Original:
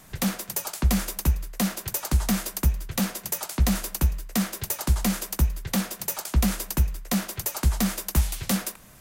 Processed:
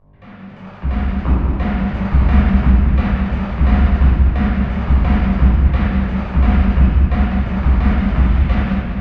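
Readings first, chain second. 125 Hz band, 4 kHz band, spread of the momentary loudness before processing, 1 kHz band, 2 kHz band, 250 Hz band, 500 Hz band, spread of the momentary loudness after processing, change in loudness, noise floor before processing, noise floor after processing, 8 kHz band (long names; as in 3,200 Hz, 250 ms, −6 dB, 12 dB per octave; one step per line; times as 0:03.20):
+13.0 dB, −4.0 dB, 4 LU, +10.0 dB, +8.0 dB, +10.5 dB, +9.0 dB, 6 LU, +10.5 dB, −48 dBFS, −36 dBFS, below −30 dB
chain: fade in at the beginning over 2.25 s
gain on a spectral selection 0:01.23–0:01.51, 230–1,500 Hz +7 dB
low-pass filter 2,600 Hz 24 dB per octave
speech leveller within 3 dB 2 s
hum with harmonics 50 Hz, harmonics 22, −56 dBFS −5 dB per octave
rectangular room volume 1,000 cubic metres, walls mixed, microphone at 5.8 metres
feedback echo with a swinging delay time 199 ms, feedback 60%, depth 90 cents, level −7 dB
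level −2.5 dB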